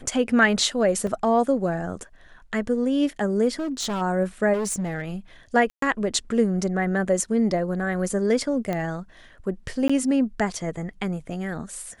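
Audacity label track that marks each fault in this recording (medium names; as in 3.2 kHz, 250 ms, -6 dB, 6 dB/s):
1.070000	1.070000	dropout 2.9 ms
3.590000	4.020000	clipped -24 dBFS
4.530000	5.110000	clipped -23 dBFS
5.700000	5.820000	dropout 123 ms
8.730000	8.730000	pop -15 dBFS
9.880000	9.890000	dropout 15 ms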